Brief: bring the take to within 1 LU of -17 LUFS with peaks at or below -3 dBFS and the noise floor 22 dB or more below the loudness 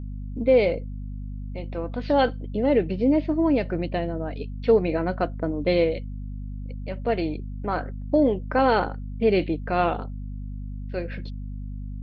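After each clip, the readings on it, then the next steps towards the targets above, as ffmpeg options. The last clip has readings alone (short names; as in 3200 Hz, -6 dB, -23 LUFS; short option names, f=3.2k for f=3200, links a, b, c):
hum 50 Hz; harmonics up to 250 Hz; hum level -31 dBFS; loudness -24.5 LUFS; peak -8.5 dBFS; loudness target -17.0 LUFS
-> -af "bandreject=f=50:t=h:w=4,bandreject=f=100:t=h:w=4,bandreject=f=150:t=h:w=4,bandreject=f=200:t=h:w=4,bandreject=f=250:t=h:w=4"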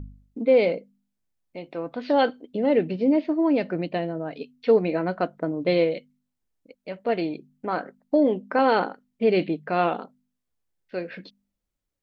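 hum none; loudness -24.5 LUFS; peak -9.0 dBFS; loudness target -17.0 LUFS
-> -af "volume=7.5dB,alimiter=limit=-3dB:level=0:latency=1"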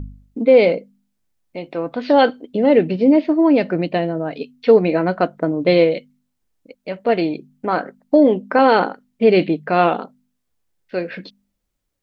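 loudness -17.0 LUFS; peak -3.0 dBFS; noise floor -73 dBFS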